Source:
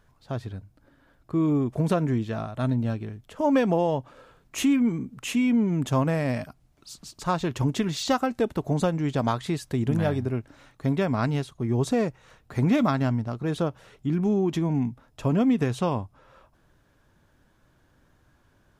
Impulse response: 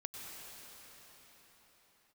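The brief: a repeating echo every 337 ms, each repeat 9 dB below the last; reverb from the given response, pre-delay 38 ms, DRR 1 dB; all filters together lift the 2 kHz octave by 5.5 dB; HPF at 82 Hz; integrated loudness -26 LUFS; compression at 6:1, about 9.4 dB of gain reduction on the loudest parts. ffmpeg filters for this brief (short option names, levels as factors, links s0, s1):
-filter_complex "[0:a]highpass=82,equalizer=f=2000:t=o:g=7,acompressor=threshold=0.0398:ratio=6,aecho=1:1:337|674|1011|1348:0.355|0.124|0.0435|0.0152,asplit=2[s0][s1];[1:a]atrim=start_sample=2205,adelay=38[s2];[s1][s2]afir=irnorm=-1:irlink=0,volume=1[s3];[s0][s3]amix=inputs=2:normalize=0,volume=1.68"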